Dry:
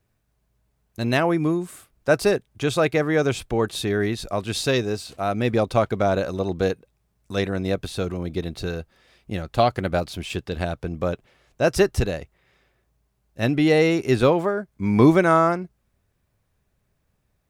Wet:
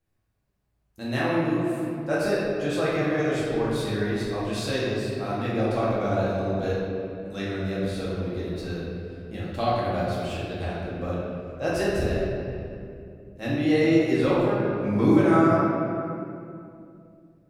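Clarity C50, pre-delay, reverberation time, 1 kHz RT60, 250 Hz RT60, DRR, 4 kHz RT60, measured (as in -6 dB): -2.0 dB, 4 ms, 2.5 s, 2.3 s, 3.2 s, -8.0 dB, 1.6 s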